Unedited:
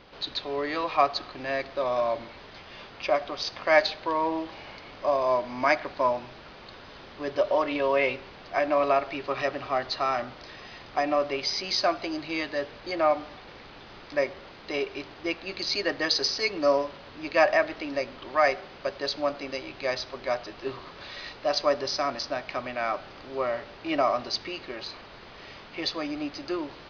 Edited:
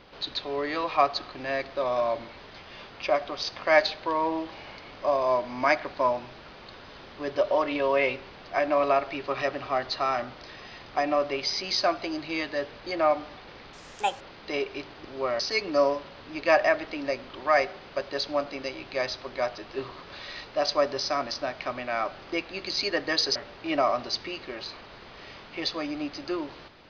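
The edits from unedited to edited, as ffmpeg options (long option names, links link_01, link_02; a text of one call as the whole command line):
ffmpeg -i in.wav -filter_complex "[0:a]asplit=7[link_01][link_02][link_03][link_04][link_05][link_06][link_07];[link_01]atrim=end=13.734[link_08];[link_02]atrim=start=13.73:end=14.41,asetpts=PTS-STARTPTS,asetrate=63063,aresample=44100[link_09];[link_03]atrim=start=14.406:end=15.252[link_10];[link_04]atrim=start=23.208:end=23.562[link_11];[link_05]atrim=start=16.278:end=23.212[link_12];[link_06]atrim=start=15.248:end=16.282[link_13];[link_07]atrim=start=23.558[link_14];[link_08][link_09]acrossfade=duration=0.004:curve1=hsin:curve2=hsin[link_15];[link_15][link_10]acrossfade=duration=0.004:curve1=hsin:curve2=hsin[link_16];[link_16][link_11]acrossfade=duration=0.004:curve1=hsin:curve2=hsin[link_17];[link_17][link_12]acrossfade=duration=0.004:curve1=hsin:curve2=hsin[link_18];[link_18][link_13]acrossfade=duration=0.004:curve1=hsin:curve2=hsin[link_19];[link_19][link_14]acrossfade=duration=0.004:curve1=hsin:curve2=hsin" out.wav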